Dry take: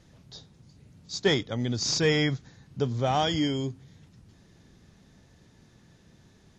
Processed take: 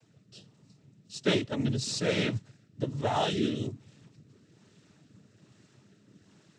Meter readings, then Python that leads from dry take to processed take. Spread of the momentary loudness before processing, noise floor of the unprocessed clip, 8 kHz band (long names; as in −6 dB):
13 LU, −59 dBFS, −5.5 dB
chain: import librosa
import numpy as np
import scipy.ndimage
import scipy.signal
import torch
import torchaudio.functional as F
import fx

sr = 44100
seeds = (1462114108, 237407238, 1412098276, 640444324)

y = fx.noise_vocoder(x, sr, seeds[0], bands=12)
y = fx.rotary(y, sr, hz=1.2)
y = fx.rider(y, sr, range_db=10, speed_s=0.5)